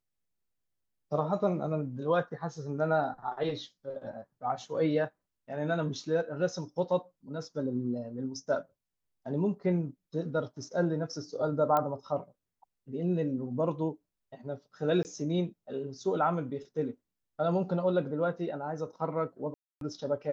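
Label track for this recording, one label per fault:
11.770000	11.770000	click −16 dBFS
15.030000	15.050000	drop-out 19 ms
19.540000	19.810000	drop-out 272 ms

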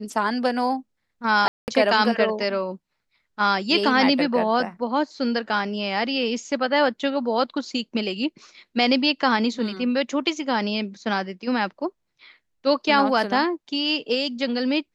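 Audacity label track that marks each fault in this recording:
1.480000	1.680000	drop-out 199 ms

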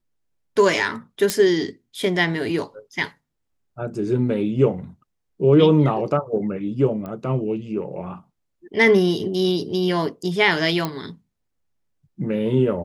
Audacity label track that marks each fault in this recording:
1.300000	1.300000	click −4 dBFS
7.060000	7.060000	click −21 dBFS
10.850000	10.850000	click −10 dBFS

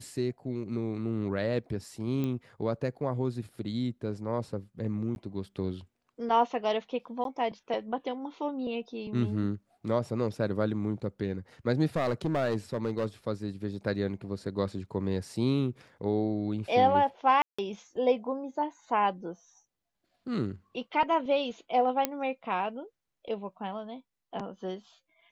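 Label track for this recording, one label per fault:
2.240000	2.240000	click −21 dBFS
5.150000	5.160000	drop-out 11 ms
7.240000	7.250000	drop-out 12 ms
11.960000	13.060000	clipping −23.5 dBFS
17.420000	17.590000	drop-out 165 ms
22.050000	22.050000	click −11 dBFS

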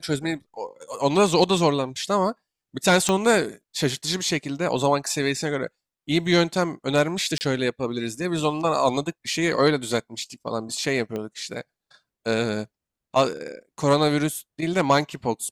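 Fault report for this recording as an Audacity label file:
3.090000	3.090000	click −8 dBFS
7.380000	7.410000	drop-out 29 ms
11.160000	11.160000	click −18 dBFS

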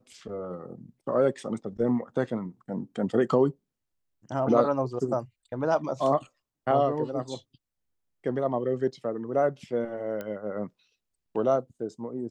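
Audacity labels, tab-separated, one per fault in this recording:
10.210000	10.210000	click −22 dBFS

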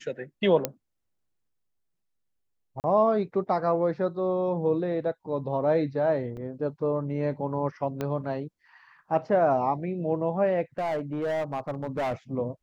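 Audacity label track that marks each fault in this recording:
0.650000	0.650000	click −10 dBFS
2.800000	2.840000	drop-out 39 ms
6.370000	6.370000	drop-out 4.8 ms
8.010000	8.010000	click −17 dBFS
10.780000	12.140000	clipping −25 dBFS

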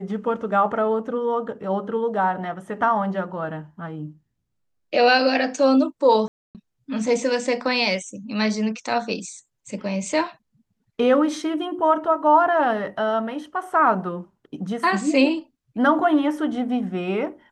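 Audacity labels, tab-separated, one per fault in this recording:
6.280000	6.550000	drop-out 268 ms

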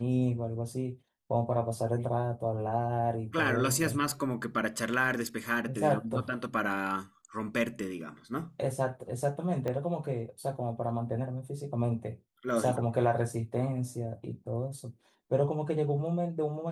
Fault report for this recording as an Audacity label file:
9.680000	9.680000	click −21 dBFS

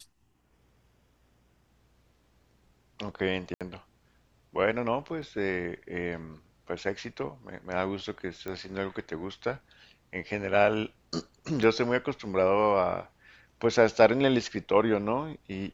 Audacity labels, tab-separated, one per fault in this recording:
3.540000	3.610000	drop-out 67 ms
5.220000	5.220000	drop-out 2.8 ms
8.480000	8.480000	click −23 dBFS
11.630000	11.630000	drop-out 4.8 ms

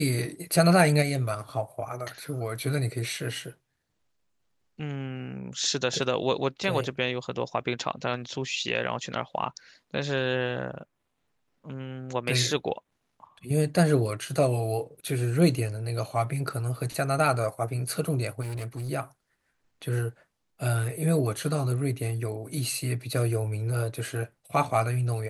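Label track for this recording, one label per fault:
18.410000	18.900000	clipping −31 dBFS

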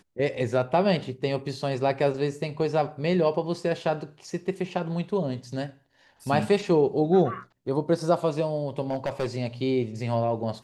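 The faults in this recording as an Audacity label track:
8.900000	9.260000	clipping −22 dBFS

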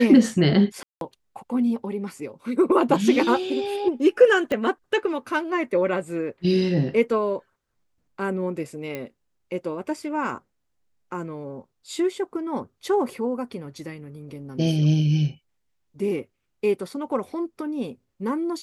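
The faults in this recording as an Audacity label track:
0.830000	1.010000	drop-out 182 ms
4.520000	4.520000	click −14 dBFS
8.950000	8.950000	click −17 dBFS

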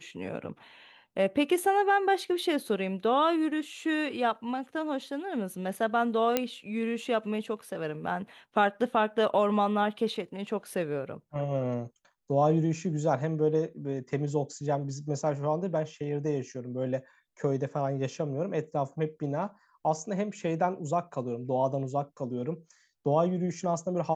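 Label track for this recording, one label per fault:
6.370000	6.370000	click −10 dBFS

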